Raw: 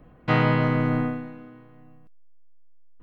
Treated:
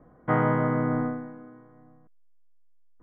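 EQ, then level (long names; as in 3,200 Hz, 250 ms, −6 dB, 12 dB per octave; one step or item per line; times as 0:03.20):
Savitzky-Golay smoothing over 41 samples
high-frequency loss of the air 480 metres
low-shelf EQ 170 Hz −11 dB
+2.0 dB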